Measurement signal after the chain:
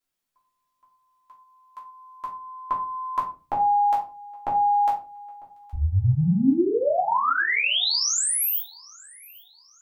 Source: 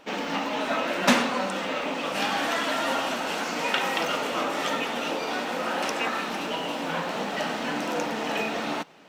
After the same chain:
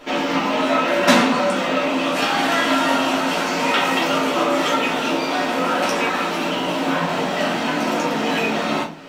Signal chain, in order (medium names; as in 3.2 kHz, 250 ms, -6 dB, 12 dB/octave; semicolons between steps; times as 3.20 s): in parallel at 0 dB: compression, threshold -36 dBFS; on the sum: thinning echo 818 ms, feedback 39%, high-pass 1.2 kHz, level -23 dB; simulated room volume 170 m³, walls furnished, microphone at 3 m; trim -1 dB